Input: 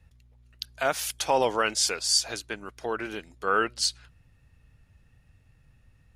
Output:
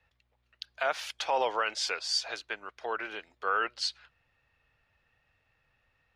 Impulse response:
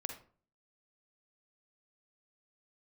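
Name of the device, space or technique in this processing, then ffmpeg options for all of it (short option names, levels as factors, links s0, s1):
DJ mixer with the lows and highs turned down: -filter_complex "[0:a]acrossover=split=470 4700:gain=0.112 1 0.0794[s0][s1][s2];[s0][s1][s2]amix=inputs=3:normalize=0,alimiter=limit=0.133:level=0:latency=1:release=48"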